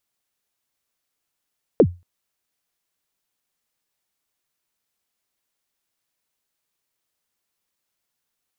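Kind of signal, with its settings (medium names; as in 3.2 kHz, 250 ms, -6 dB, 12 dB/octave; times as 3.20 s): kick drum length 0.23 s, from 550 Hz, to 88 Hz, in 64 ms, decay 0.26 s, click off, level -5 dB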